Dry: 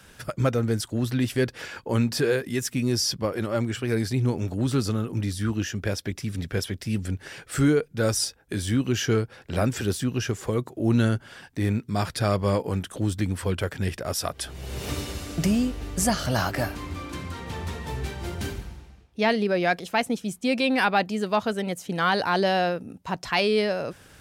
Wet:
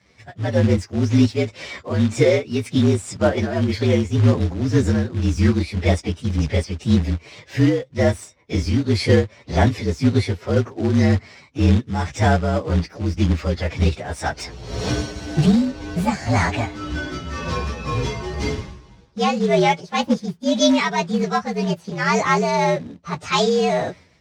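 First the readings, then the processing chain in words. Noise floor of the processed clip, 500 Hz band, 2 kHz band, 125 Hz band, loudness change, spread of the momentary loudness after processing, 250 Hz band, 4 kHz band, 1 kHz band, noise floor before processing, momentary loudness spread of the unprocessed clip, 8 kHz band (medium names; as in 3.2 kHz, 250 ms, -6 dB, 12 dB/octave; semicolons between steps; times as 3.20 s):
-50 dBFS, +5.5 dB, +3.0 dB, +7.0 dB, +6.0 dB, 9 LU, +6.5 dB, +3.0 dB, +5.0 dB, -53 dBFS, 11 LU, -1.0 dB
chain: frequency axis rescaled in octaves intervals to 116%; high-pass 65 Hz 24 dB/octave; peaking EQ 5.6 kHz +6.5 dB 0.54 oct; level rider gain up to 15 dB; tremolo triangle 1.9 Hz, depth 60%; short-mantissa float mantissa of 2-bit; distance through air 110 m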